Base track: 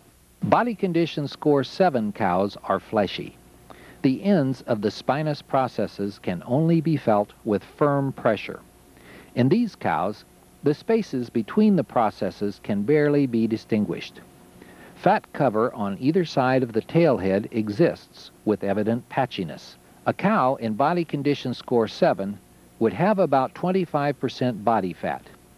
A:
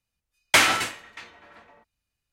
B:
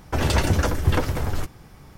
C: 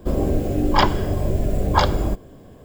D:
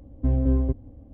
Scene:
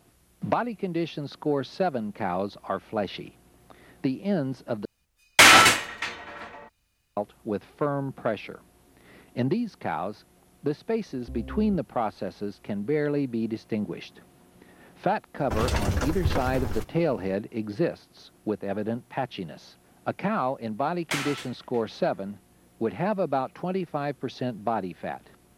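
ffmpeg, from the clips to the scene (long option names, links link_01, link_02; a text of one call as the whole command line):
ffmpeg -i bed.wav -i cue0.wav -i cue1.wav -i cue2.wav -i cue3.wav -filter_complex "[1:a]asplit=2[link_01][link_02];[0:a]volume=-6.5dB[link_03];[link_01]alimiter=level_in=13dB:limit=-1dB:release=50:level=0:latency=1[link_04];[link_03]asplit=2[link_05][link_06];[link_05]atrim=end=4.854[link_07];[link_04]atrim=end=2.32,asetpts=PTS-STARTPTS,volume=-2.5dB[link_08];[link_06]atrim=start=7.166[link_09];[4:a]atrim=end=1.13,asetpts=PTS-STARTPTS,volume=-16.5dB,afade=type=in:duration=0.004:curve=hsin,afade=type=out:start_time=1.126:duration=0.004:curve=hsin,adelay=11040[link_10];[2:a]atrim=end=1.97,asetpts=PTS-STARTPTS,volume=-6dB,afade=type=in:duration=0.004:curve=hsin,afade=type=out:start_time=1.966:duration=0.004:curve=hsin,adelay=15380[link_11];[link_02]atrim=end=2.32,asetpts=PTS-STARTPTS,volume=-12.5dB,afade=type=in:duration=0.004:curve=hsin,afade=type=out:start_time=2.316:duration=0.004:curve=hsin,adelay=20570[link_12];[link_07][link_08]acrossfade=duration=0.004:curve1=hsin:curve2=hsin[link_13];[link_13][link_09]acrossfade=duration=0.004:curve1=hsin:curve2=hsin[link_14];[link_14][link_10][link_11][link_12]amix=inputs=4:normalize=0" out.wav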